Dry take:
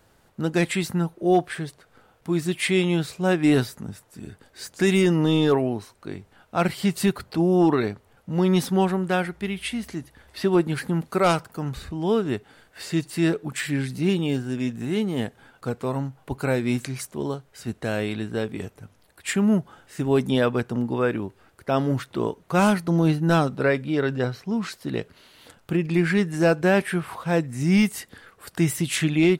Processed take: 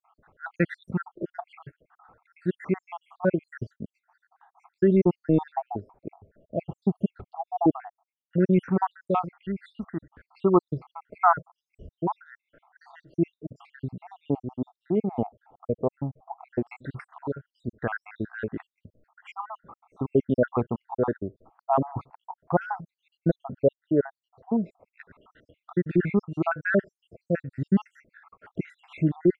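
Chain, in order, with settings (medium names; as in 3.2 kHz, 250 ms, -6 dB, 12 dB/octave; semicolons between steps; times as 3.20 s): random holes in the spectrogram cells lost 75%; LFO low-pass saw down 0.12 Hz 650–1500 Hz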